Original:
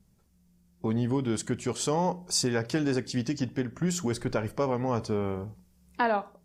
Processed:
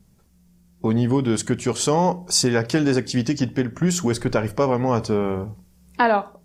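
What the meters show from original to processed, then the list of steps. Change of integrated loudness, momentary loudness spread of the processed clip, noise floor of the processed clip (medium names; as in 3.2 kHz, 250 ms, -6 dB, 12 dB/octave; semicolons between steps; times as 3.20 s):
+8.0 dB, 5 LU, -57 dBFS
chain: hum notches 50/100 Hz; trim +8 dB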